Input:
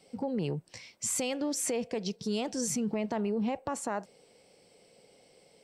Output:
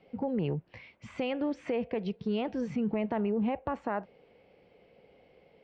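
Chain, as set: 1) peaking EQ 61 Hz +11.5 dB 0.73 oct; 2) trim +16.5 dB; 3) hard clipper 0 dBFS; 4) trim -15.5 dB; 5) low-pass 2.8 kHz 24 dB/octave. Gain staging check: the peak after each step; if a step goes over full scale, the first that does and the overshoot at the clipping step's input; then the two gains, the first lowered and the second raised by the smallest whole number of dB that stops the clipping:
-18.5 dBFS, -2.0 dBFS, -2.0 dBFS, -17.5 dBFS, -19.5 dBFS; nothing clips

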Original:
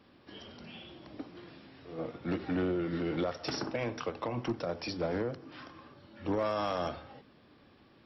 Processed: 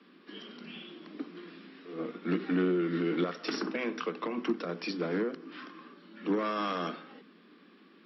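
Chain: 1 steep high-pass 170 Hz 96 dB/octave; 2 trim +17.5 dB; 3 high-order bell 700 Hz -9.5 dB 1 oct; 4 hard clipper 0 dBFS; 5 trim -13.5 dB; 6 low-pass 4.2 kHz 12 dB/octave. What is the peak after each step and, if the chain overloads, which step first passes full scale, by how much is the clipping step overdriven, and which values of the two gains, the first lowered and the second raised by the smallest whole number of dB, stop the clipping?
-21.0 dBFS, -3.5 dBFS, -3.5 dBFS, -3.5 dBFS, -17.0 dBFS, -17.0 dBFS; nothing clips

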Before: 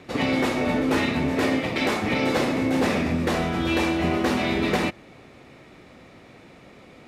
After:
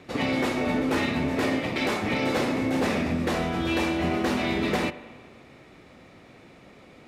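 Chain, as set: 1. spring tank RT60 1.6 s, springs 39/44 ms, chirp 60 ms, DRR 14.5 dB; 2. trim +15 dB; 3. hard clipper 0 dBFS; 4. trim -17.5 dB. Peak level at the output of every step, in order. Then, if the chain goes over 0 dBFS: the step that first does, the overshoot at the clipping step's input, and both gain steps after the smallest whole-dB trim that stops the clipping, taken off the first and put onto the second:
-10.0 dBFS, +5.0 dBFS, 0.0 dBFS, -17.5 dBFS; step 2, 5.0 dB; step 2 +10 dB, step 4 -12.5 dB

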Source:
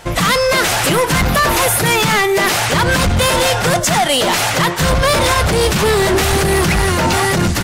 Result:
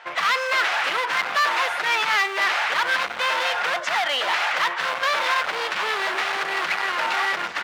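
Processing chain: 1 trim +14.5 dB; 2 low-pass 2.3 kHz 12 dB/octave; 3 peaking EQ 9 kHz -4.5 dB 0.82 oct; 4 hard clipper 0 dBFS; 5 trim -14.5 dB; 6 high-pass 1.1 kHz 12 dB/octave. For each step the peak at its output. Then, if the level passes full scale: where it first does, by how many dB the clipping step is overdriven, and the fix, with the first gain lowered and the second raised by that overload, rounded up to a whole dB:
+5.0 dBFS, +5.5 dBFS, +5.5 dBFS, 0.0 dBFS, -14.5 dBFS, -11.0 dBFS; step 1, 5.5 dB; step 1 +8.5 dB, step 5 -8.5 dB

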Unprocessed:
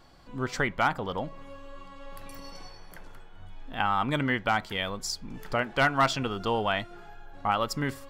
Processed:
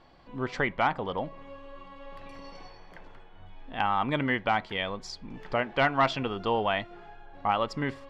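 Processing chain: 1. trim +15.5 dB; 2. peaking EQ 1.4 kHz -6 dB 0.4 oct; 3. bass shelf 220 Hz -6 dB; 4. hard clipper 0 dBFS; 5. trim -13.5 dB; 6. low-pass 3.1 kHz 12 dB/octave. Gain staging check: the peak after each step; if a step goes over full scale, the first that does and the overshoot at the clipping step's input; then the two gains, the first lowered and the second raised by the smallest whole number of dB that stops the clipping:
+5.0 dBFS, +3.5 dBFS, +3.5 dBFS, 0.0 dBFS, -13.5 dBFS, -13.0 dBFS; step 1, 3.5 dB; step 1 +11.5 dB, step 5 -9.5 dB

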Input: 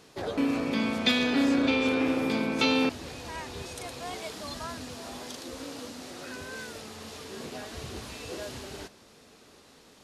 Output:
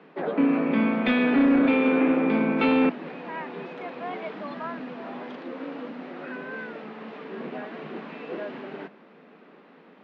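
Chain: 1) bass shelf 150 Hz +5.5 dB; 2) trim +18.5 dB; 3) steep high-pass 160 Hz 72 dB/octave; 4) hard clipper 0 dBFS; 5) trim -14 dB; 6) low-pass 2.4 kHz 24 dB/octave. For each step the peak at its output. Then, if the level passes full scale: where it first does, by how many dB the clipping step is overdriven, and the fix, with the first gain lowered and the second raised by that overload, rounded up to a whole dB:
-10.0 dBFS, +8.5 dBFS, +9.0 dBFS, 0.0 dBFS, -14.0 dBFS, -13.0 dBFS; step 2, 9.0 dB; step 2 +9.5 dB, step 5 -5 dB

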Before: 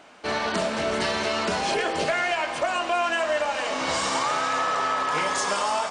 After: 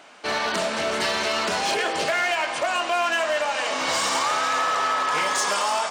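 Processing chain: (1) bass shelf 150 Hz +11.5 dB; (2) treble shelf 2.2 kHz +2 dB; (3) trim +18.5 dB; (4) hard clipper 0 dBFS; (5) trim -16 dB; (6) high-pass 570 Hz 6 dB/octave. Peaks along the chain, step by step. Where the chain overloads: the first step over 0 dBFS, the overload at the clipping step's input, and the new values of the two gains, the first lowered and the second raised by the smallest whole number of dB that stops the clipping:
-12.0 dBFS, -11.5 dBFS, +7.0 dBFS, 0.0 dBFS, -16.0 dBFS, -13.0 dBFS; step 3, 7.0 dB; step 3 +11.5 dB, step 5 -9 dB

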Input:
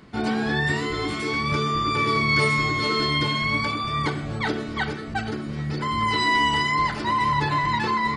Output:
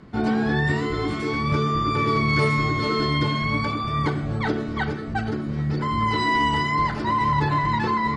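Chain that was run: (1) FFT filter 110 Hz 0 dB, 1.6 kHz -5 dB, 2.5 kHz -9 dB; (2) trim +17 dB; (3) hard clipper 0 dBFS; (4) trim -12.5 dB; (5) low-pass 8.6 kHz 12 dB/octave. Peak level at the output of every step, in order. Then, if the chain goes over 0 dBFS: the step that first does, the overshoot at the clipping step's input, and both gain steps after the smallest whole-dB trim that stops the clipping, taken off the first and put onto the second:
-13.5 dBFS, +3.5 dBFS, 0.0 dBFS, -12.5 dBFS, -12.5 dBFS; step 2, 3.5 dB; step 2 +13 dB, step 4 -8.5 dB

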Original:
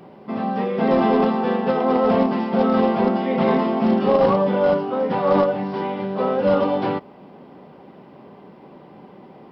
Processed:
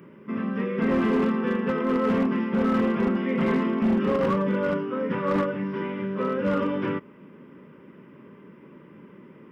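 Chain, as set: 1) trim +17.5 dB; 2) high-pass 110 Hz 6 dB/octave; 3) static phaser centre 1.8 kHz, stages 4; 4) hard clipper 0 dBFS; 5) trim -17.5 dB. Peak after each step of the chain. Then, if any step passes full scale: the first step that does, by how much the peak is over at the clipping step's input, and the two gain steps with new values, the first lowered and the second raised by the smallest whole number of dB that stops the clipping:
+10.0 dBFS, +11.0 dBFS, +7.5 dBFS, 0.0 dBFS, -17.5 dBFS; step 1, 7.5 dB; step 1 +9.5 dB, step 5 -9.5 dB

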